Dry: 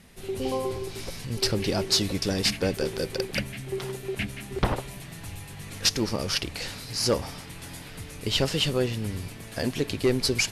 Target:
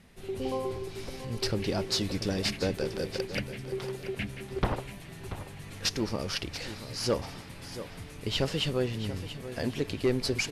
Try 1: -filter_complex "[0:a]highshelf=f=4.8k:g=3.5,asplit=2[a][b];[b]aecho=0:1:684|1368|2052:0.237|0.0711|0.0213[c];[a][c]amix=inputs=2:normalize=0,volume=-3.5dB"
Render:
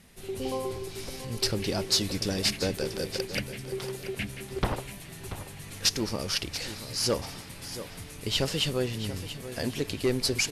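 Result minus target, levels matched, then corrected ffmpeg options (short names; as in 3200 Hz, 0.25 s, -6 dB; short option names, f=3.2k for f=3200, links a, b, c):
8000 Hz band +5.0 dB
-filter_complex "[0:a]highshelf=f=4.8k:g=-7,asplit=2[a][b];[b]aecho=0:1:684|1368|2052:0.237|0.0711|0.0213[c];[a][c]amix=inputs=2:normalize=0,volume=-3.5dB"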